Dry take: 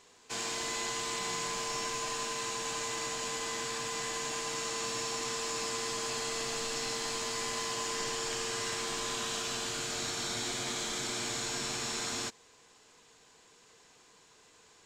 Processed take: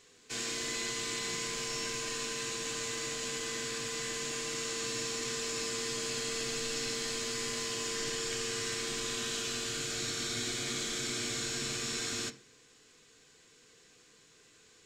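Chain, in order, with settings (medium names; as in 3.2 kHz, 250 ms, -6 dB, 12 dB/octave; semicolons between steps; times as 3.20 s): peaking EQ 860 Hz -13.5 dB 0.73 oct; on a send: reverberation RT60 0.50 s, pre-delay 3 ms, DRR 4.5 dB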